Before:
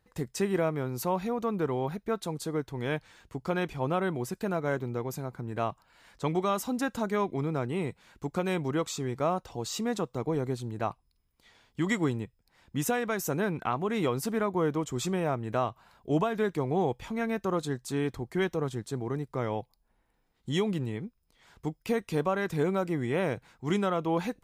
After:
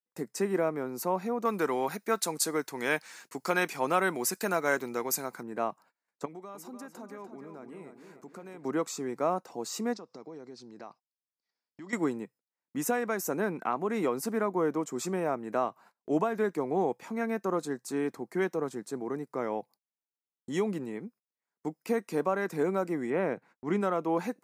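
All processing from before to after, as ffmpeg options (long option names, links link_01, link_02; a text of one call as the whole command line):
ffmpeg -i in.wav -filter_complex "[0:a]asettb=1/sr,asplit=3[link_01][link_02][link_03];[link_01]atrim=end=1.454[link_04];[link_02]atrim=start=1.45:end=5.43,asetpts=PTS-STARTPTS,afade=type=in:duration=0.004:curve=qsin,afade=type=out:start_time=3.976:duration=0.004:curve=qsin,tiltshelf=frequency=1300:gain=-8,acontrast=75[link_05];[link_03]atrim=start=5.426[link_06];[link_04][link_05]acrossfade=duration=0.004:curve1=hsin:curve2=qsin[link_07];[link_07][link_06]acrossfade=duration=0.004:curve1=qsin:curve2=hsin,asettb=1/sr,asplit=3[link_08][link_09][link_10];[link_08]atrim=end=6.254[link_11];[link_09]atrim=start=6.25:end=8.65,asetpts=PTS-STARTPTS,afade=type=in:duration=0.004:curve=qsin,afade=type=out:start_time=2.396:duration=0.004:curve=qsin,acompressor=threshold=-45dB:ratio=3:attack=3.2:release=140:knee=1:detection=peak,asplit=2[link_12][link_13];[link_13]adelay=296,lowpass=frequency=3900:poles=1,volume=-7.5dB,asplit=2[link_14][link_15];[link_15]adelay=296,lowpass=frequency=3900:poles=1,volume=0.5,asplit=2[link_16][link_17];[link_17]adelay=296,lowpass=frequency=3900:poles=1,volume=0.5,asplit=2[link_18][link_19];[link_19]adelay=296,lowpass=frequency=3900:poles=1,volume=0.5,asplit=2[link_20][link_21];[link_21]adelay=296,lowpass=frequency=3900:poles=1,volume=0.5,asplit=2[link_22][link_23];[link_23]adelay=296,lowpass=frequency=3900:poles=1,volume=0.5[link_24];[link_12][link_14][link_16][link_18][link_20][link_22][link_24]amix=inputs=7:normalize=0,atrim=end_sample=105840[link_25];[link_10]atrim=start=8.646[link_26];[link_11][link_25]acrossfade=duration=0.004:curve1=hsin:curve2=qsin[link_27];[link_27][link_26]acrossfade=duration=0.004:curve1=qsin:curve2=hsin,asettb=1/sr,asplit=3[link_28][link_29][link_30];[link_28]atrim=end=9.934[link_31];[link_29]atrim=start=9.93:end=11.93,asetpts=PTS-STARTPTS,afade=type=in:duration=0.004:curve=qsin,afade=type=out:start_time=1.996:duration=0.004:curve=qsin,lowpass=frequency=5100:width_type=q:width=4.7,acompressor=threshold=-42dB:ratio=4:attack=3.2:release=140:knee=1:detection=peak[link_32];[link_30]atrim=start=11.926[link_33];[link_31][link_32]acrossfade=duration=0.004:curve1=hsin:curve2=qsin[link_34];[link_34][link_33]acrossfade=duration=0.004:curve1=qsin:curve2=hsin,asettb=1/sr,asplit=3[link_35][link_36][link_37];[link_35]atrim=end=23.104[link_38];[link_36]atrim=start=23.1:end=23.81,asetpts=PTS-STARTPTS,afade=type=in:duration=0.004:curve=qsin,afade=type=out:start_time=0.706:duration=0.004:curve=qsin,agate=range=-33dB:threshold=-54dB:ratio=3:release=100:detection=peak,bass=frequency=250:gain=2,treble=frequency=4000:gain=-12[link_39];[link_37]atrim=start=23.806[link_40];[link_38][link_39]acrossfade=duration=0.004:curve1=hsin:curve2=qsin[link_41];[link_41][link_40]acrossfade=duration=0.004:curve1=qsin:curve2=hsin,highpass=frequency=200:width=0.5412,highpass=frequency=200:width=1.3066,equalizer=frequency=3300:width=2.4:gain=-11.5,agate=range=-31dB:threshold=-54dB:ratio=16:detection=peak" out.wav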